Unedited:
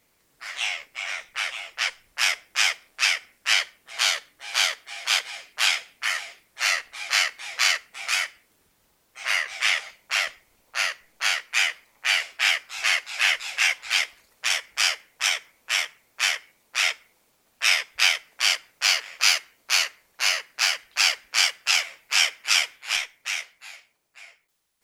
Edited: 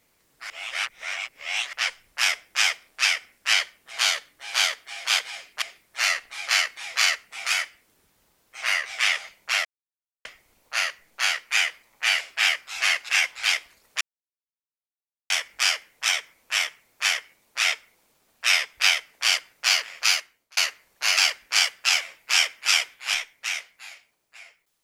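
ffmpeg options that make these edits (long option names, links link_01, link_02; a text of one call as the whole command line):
ffmpeg -i in.wav -filter_complex "[0:a]asplit=9[link_01][link_02][link_03][link_04][link_05][link_06][link_07][link_08][link_09];[link_01]atrim=end=0.502[link_10];[link_02]atrim=start=0.498:end=1.732,asetpts=PTS-STARTPTS,areverse[link_11];[link_03]atrim=start=1.728:end=5.622[link_12];[link_04]atrim=start=6.238:end=10.27,asetpts=PTS-STARTPTS,afade=type=out:start_time=4.028:duration=0.004:curve=hsin,apad=pad_dur=0.6[link_13];[link_05]atrim=start=10.27:end=13.112,asetpts=PTS-STARTPTS,afade=type=in:duration=0.004:curve=hsin[link_14];[link_06]atrim=start=13.558:end=14.48,asetpts=PTS-STARTPTS,afade=type=out:start_time=0.918:duration=0.004:curve=hsin,apad=pad_dur=1.29[link_15];[link_07]atrim=start=14.48:end=19.75,asetpts=PTS-STARTPTS,afade=type=in:duration=0.004:curve=hsin,afade=type=out:start_time=4.7:duration=0.57[link_16];[link_08]atrim=start=19.75:end=20.352,asetpts=PTS-STARTPTS,afade=type=in:duration=0.004:curve=hsin[link_17];[link_09]atrim=start=20.988[link_18];[link_10][link_11]acrossfade=duration=0.004:curve1=hsin:curve2=hsin[link_19];[link_19][link_12]acrossfade=duration=0.004:curve1=hsin:curve2=hsin[link_20];[link_13][link_14]concat=n=2:v=0:a=1[link_21];[link_20][link_21]acrossfade=duration=0.004:curve1=hsin:curve2=hsin[link_22];[link_15][link_16][link_17]concat=n=3:v=0:a=1[link_23];[link_22][link_23]acrossfade=duration=0.004:curve1=hsin:curve2=hsin[link_24];[link_24][link_18]acrossfade=duration=0.004:curve1=hsin:curve2=hsin" out.wav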